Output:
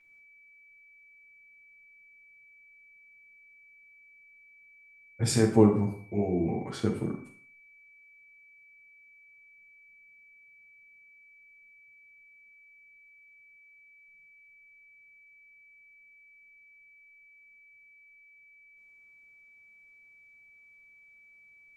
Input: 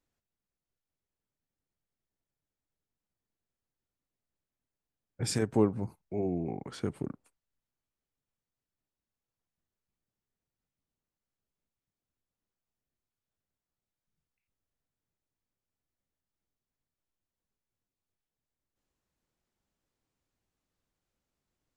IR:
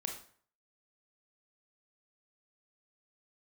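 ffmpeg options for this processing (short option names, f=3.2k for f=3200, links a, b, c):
-filter_complex "[0:a]aeval=exprs='val(0)+0.001*sin(2*PI*2300*n/s)':c=same,asplit=2[a][b];[1:a]atrim=start_sample=2205,adelay=9[c];[b][c]afir=irnorm=-1:irlink=0,volume=3dB[d];[a][d]amix=inputs=2:normalize=0"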